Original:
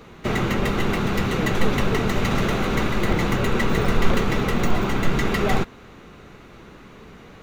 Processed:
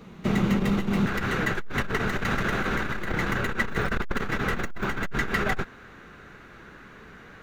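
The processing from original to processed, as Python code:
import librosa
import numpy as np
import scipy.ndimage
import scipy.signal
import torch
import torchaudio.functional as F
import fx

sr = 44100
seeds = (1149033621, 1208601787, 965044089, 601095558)

y = fx.peak_eq(x, sr, hz=fx.steps((0.0, 190.0), (1.06, 1600.0)), db=12.0, octaves=0.57)
y = fx.transformer_sat(y, sr, knee_hz=99.0)
y = y * librosa.db_to_amplitude(-5.0)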